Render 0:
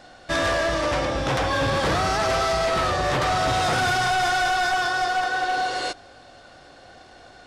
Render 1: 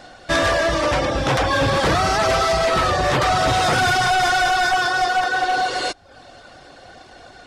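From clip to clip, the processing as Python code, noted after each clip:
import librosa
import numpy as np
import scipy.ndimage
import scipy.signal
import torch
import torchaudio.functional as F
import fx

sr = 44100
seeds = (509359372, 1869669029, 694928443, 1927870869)

y = fx.dereverb_blind(x, sr, rt60_s=0.51)
y = F.gain(torch.from_numpy(y), 5.5).numpy()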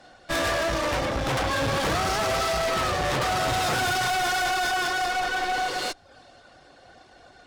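y = fx.clip_asym(x, sr, top_db=-34.5, bottom_db=-17.5)
y = fx.band_widen(y, sr, depth_pct=40)
y = F.gain(torch.from_numpy(y), -1.0).numpy()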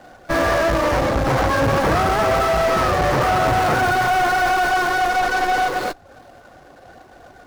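y = scipy.ndimage.median_filter(x, 15, mode='constant')
y = F.gain(torch.from_numpy(y), 8.5).numpy()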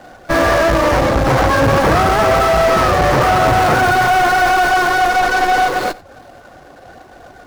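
y = x + 10.0 ** (-20.5 / 20.0) * np.pad(x, (int(91 * sr / 1000.0), 0))[:len(x)]
y = F.gain(torch.from_numpy(y), 5.0).numpy()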